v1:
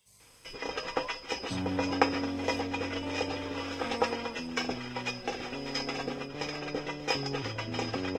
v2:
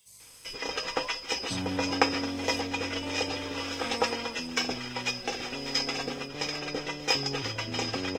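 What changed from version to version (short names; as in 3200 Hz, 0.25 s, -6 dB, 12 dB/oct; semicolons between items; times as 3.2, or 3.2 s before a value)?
master: add high shelf 3100 Hz +10 dB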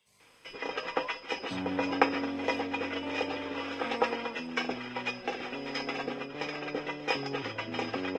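master: add three-band isolator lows -12 dB, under 160 Hz, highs -19 dB, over 3200 Hz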